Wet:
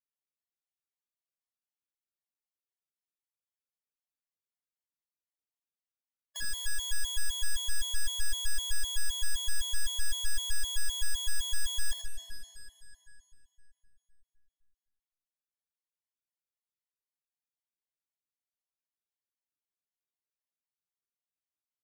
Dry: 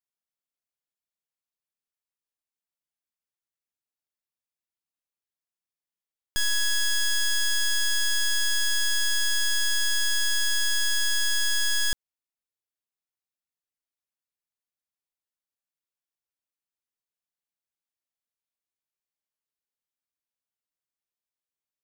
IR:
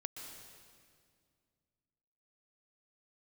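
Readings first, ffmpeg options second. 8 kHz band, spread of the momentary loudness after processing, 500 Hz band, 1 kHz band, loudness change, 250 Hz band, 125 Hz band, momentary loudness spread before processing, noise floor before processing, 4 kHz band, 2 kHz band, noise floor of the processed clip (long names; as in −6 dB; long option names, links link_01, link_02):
−8.0 dB, 10 LU, −11.5 dB, −9.5 dB, −9.5 dB, −10.5 dB, can't be measured, 1 LU, below −85 dBFS, −9.5 dB, −15.0 dB, below −85 dBFS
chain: -filter_complex "[0:a]aecho=1:1:66|132|198|264|330:0.398|0.183|0.0842|0.0388|0.0178,asplit=2[link_01][link_02];[1:a]atrim=start_sample=2205,asetrate=29988,aresample=44100,adelay=83[link_03];[link_02][link_03]afir=irnorm=-1:irlink=0,volume=-4.5dB[link_04];[link_01][link_04]amix=inputs=2:normalize=0,afftfilt=real='re*gt(sin(2*PI*3.9*pts/sr)*(1-2*mod(floor(b*sr/1024/560),2)),0)':imag='im*gt(sin(2*PI*3.9*pts/sr)*(1-2*mod(floor(b*sr/1024/560),2)),0)':win_size=1024:overlap=0.75,volume=-8dB"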